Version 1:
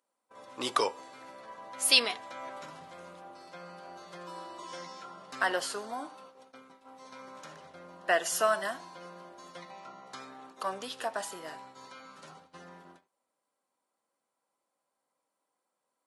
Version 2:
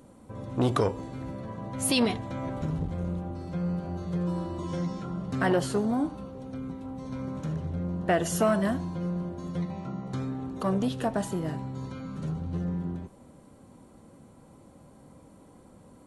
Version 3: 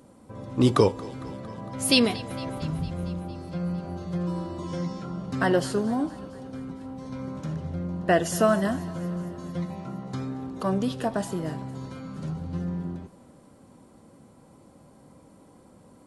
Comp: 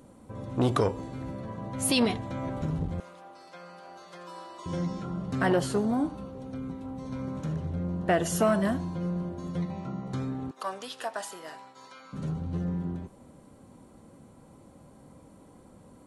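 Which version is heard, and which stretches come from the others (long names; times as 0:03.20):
2
0:03.00–0:04.66: punch in from 1
0:10.51–0:12.13: punch in from 1
not used: 3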